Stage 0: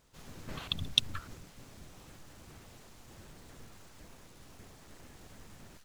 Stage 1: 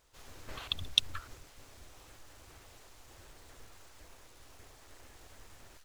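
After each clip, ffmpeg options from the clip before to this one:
ffmpeg -i in.wav -af "equalizer=frequency=180:width_type=o:width=1.1:gain=-15" out.wav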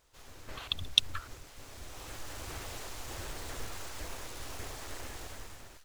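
ffmpeg -i in.wav -af "dynaudnorm=framelen=370:gausssize=5:maxgain=14dB" out.wav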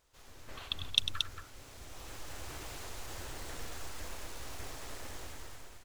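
ffmpeg -i in.wav -af "aecho=1:1:99.13|227.4:0.316|0.501,volume=-3.5dB" out.wav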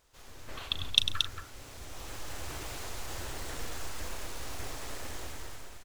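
ffmpeg -i in.wav -filter_complex "[0:a]asplit=2[link_01][link_02];[link_02]adelay=38,volume=-14dB[link_03];[link_01][link_03]amix=inputs=2:normalize=0,volume=4dB" out.wav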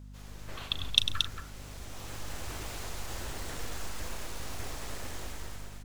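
ffmpeg -i in.wav -af "aeval=exprs='val(0)+0.00501*(sin(2*PI*50*n/s)+sin(2*PI*2*50*n/s)/2+sin(2*PI*3*50*n/s)/3+sin(2*PI*4*50*n/s)/4+sin(2*PI*5*50*n/s)/5)':channel_layout=same" out.wav

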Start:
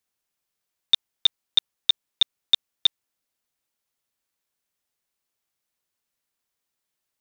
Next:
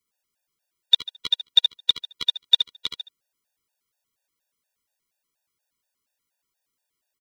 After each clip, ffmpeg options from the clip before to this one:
ffmpeg -i in.wav -filter_complex "[0:a]asplit=2[link_01][link_02];[link_02]aecho=0:1:72|144|216:0.501|0.1|0.02[link_03];[link_01][link_03]amix=inputs=2:normalize=0,afftfilt=real='re*gt(sin(2*PI*4.2*pts/sr)*(1-2*mod(floor(b*sr/1024/480),2)),0)':imag='im*gt(sin(2*PI*4.2*pts/sr)*(1-2*mod(floor(b*sr/1024/480),2)),0)':win_size=1024:overlap=0.75,volume=3.5dB" out.wav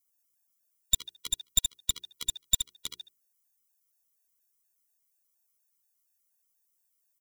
ffmpeg -i in.wav -af "bandreject=frequency=60:width_type=h:width=6,bandreject=frequency=120:width_type=h:width=6,bandreject=frequency=180:width_type=h:width=6,bandreject=frequency=240:width_type=h:width=6,bandreject=frequency=300:width_type=h:width=6,bandreject=frequency=360:width_type=h:width=6,bandreject=frequency=420:width_type=h:width=6,aeval=exprs='clip(val(0),-1,0.0944)':channel_layout=same,aexciter=amount=3.9:drive=6.4:freq=5600,volume=-9dB" out.wav

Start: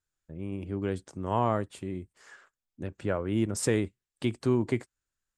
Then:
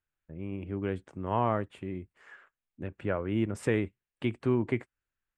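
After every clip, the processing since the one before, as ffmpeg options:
ffmpeg -i in.wav -af "highshelf=frequency=3600:width_type=q:width=1.5:gain=-11.5,volume=-1.5dB" out.wav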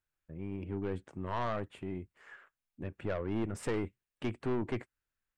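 ffmpeg -i in.wav -af "aeval=exprs='(tanh(25.1*val(0)+0.35)-tanh(0.35))/25.1':channel_layout=same" out.wav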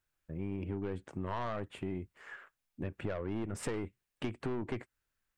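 ffmpeg -i in.wav -af "acompressor=threshold=-38dB:ratio=6,volume=4.5dB" out.wav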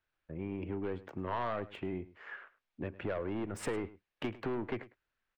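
ffmpeg -i in.wav -filter_complex "[0:a]bass=frequency=250:gain=-6,treble=frequency=4000:gain=-4,acrossover=split=330|580|5300[link_01][link_02][link_03][link_04];[link_04]aeval=exprs='val(0)*gte(abs(val(0)),0.0015)':channel_layout=same[link_05];[link_01][link_02][link_03][link_05]amix=inputs=4:normalize=0,asplit=2[link_06][link_07];[link_07]adelay=105,volume=-18dB,highshelf=frequency=4000:gain=-2.36[link_08];[link_06][link_08]amix=inputs=2:normalize=0,volume=2.5dB" out.wav

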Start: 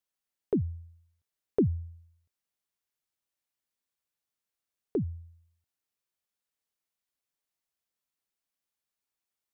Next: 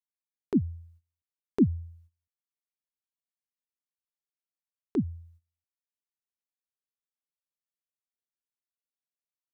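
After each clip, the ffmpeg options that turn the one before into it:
ffmpeg -i in.wav -af "agate=range=-17dB:threshold=-56dB:ratio=16:detection=peak,equalizer=frequency=125:width_type=o:width=1:gain=-3,equalizer=frequency=250:width_type=o:width=1:gain=10,equalizer=frequency=500:width_type=o:width=1:gain=-12,equalizer=frequency=1000:width_type=o:width=1:gain=4" out.wav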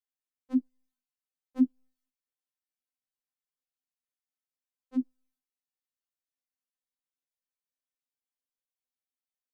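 ffmpeg -i in.wav -af "afftfilt=real='re*3.46*eq(mod(b,12),0)':imag='im*3.46*eq(mod(b,12),0)':win_size=2048:overlap=0.75,volume=-2.5dB" out.wav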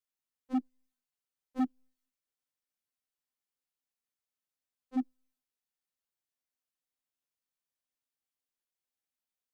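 ffmpeg -i in.wav -af "asoftclip=type=hard:threshold=-25dB" out.wav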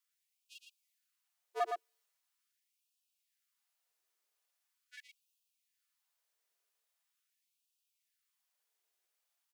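ffmpeg -i in.wav -af "afreqshift=-68,aecho=1:1:113:0.562,afftfilt=real='re*gte(b*sr/1024,310*pow(2500/310,0.5+0.5*sin(2*PI*0.42*pts/sr)))':imag='im*gte(b*sr/1024,310*pow(2500/310,0.5+0.5*sin(2*PI*0.42*pts/sr)))':win_size=1024:overlap=0.75,volume=7dB" out.wav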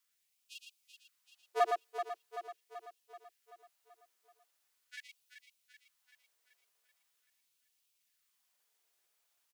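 ffmpeg -i in.wav -af "aecho=1:1:383|766|1149|1532|1915|2298|2681:0.355|0.199|0.111|0.0623|0.0349|0.0195|0.0109,volume=5dB" out.wav

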